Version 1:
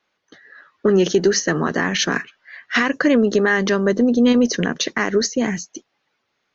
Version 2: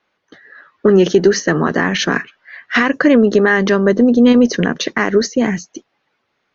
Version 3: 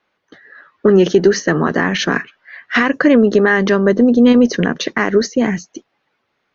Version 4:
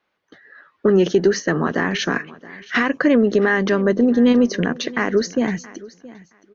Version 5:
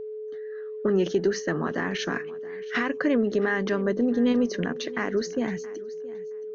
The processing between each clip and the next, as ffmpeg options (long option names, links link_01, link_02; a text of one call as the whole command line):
ffmpeg -i in.wav -af "lowpass=frequency=3000:poles=1,volume=5dB" out.wav
ffmpeg -i in.wav -af "highshelf=frequency=6000:gain=-4.5" out.wav
ffmpeg -i in.wav -af "aecho=1:1:672|1344:0.1|0.017,volume=-4.5dB" out.wav
ffmpeg -i in.wav -af "aeval=exprs='val(0)+0.0562*sin(2*PI*430*n/s)':channel_layout=same,volume=-8dB" out.wav